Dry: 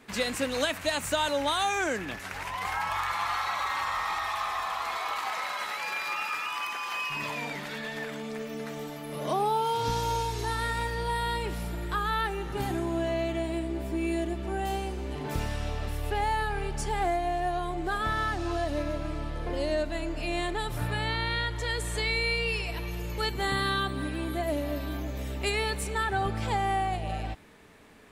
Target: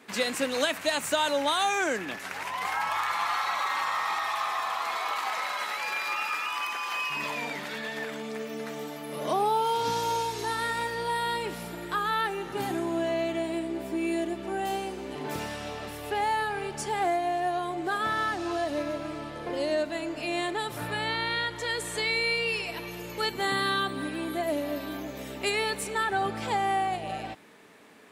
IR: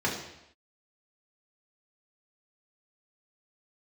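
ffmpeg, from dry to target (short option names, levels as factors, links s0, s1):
-af "highpass=200,volume=1.19"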